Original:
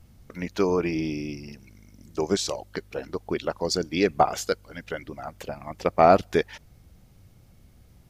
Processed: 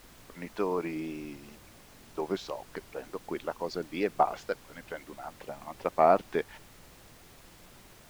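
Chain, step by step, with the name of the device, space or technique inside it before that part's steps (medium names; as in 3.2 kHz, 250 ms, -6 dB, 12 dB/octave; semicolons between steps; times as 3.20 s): horn gramophone (band-pass 190–3100 Hz; peaking EQ 940 Hz +5 dB; wow and flutter; pink noise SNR 20 dB); trim -7.5 dB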